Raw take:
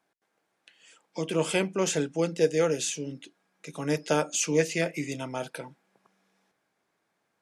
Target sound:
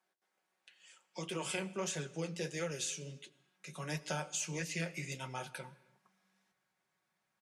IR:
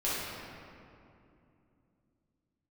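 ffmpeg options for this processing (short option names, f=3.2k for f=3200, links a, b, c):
-filter_complex "[0:a]highpass=42,lowshelf=f=450:g=-9,aecho=1:1:5.4:0.61,asubboost=boost=5:cutoff=150,acrossover=split=130[a][b];[b]acompressor=threshold=-29dB:ratio=6[c];[a][c]amix=inputs=2:normalize=0,flanger=delay=7.4:depth=9.1:regen=-54:speed=1.5:shape=triangular,asplit=2[d][e];[1:a]atrim=start_sample=2205,afade=t=out:st=0.29:d=0.01,atrim=end_sample=13230,adelay=83[f];[e][f]afir=irnorm=-1:irlink=0,volume=-26dB[g];[d][g]amix=inputs=2:normalize=0,volume=-1.5dB"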